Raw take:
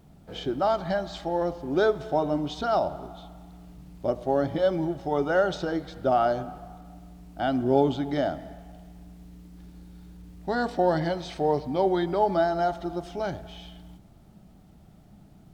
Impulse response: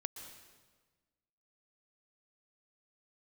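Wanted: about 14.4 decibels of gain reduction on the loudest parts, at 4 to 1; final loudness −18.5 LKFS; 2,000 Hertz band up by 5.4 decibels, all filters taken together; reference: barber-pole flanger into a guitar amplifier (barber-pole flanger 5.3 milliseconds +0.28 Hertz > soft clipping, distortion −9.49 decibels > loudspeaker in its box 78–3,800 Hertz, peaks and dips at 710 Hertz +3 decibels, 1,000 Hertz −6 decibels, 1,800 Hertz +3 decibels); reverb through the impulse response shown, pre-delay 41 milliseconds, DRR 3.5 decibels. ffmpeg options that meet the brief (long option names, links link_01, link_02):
-filter_complex "[0:a]equalizer=frequency=2000:width_type=o:gain=7,acompressor=threshold=-35dB:ratio=4,asplit=2[link_01][link_02];[1:a]atrim=start_sample=2205,adelay=41[link_03];[link_02][link_03]afir=irnorm=-1:irlink=0,volume=-1.5dB[link_04];[link_01][link_04]amix=inputs=2:normalize=0,asplit=2[link_05][link_06];[link_06]adelay=5.3,afreqshift=0.28[link_07];[link_05][link_07]amix=inputs=2:normalize=1,asoftclip=threshold=-37.5dB,highpass=78,equalizer=frequency=710:width_type=q:width=4:gain=3,equalizer=frequency=1000:width_type=q:width=4:gain=-6,equalizer=frequency=1800:width_type=q:width=4:gain=3,lowpass=frequency=3800:width=0.5412,lowpass=frequency=3800:width=1.3066,volume=25dB"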